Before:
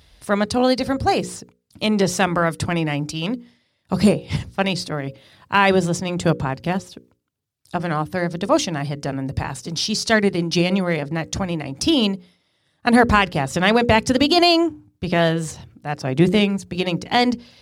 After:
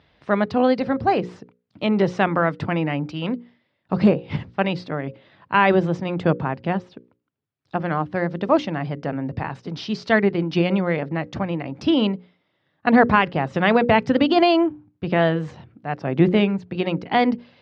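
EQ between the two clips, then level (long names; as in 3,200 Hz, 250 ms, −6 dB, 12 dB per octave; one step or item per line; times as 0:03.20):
band-pass filter 130–2,700 Hz
high-frequency loss of the air 100 metres
0.0 dB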